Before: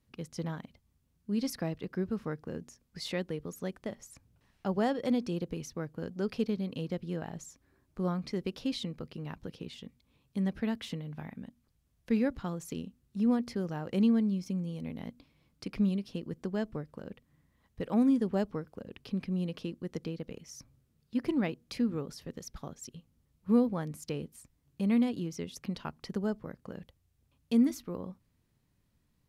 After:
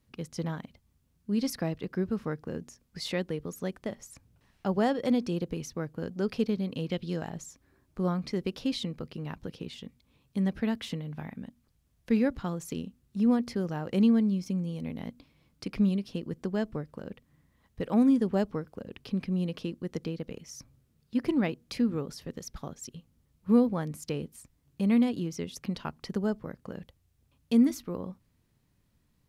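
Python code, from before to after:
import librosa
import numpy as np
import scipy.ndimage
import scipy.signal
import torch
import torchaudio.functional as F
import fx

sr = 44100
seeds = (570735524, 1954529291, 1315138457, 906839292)

y = fx.peak_eq(x, sr, hz=fx.line((6.86, 2400.0), (7.28, 7600.0)), db=11.5, octaves=0.85, at=(6.86, 7.28), fade=0.02)
y = F.gain(torch.from_numpy(y), 3.0).numpy()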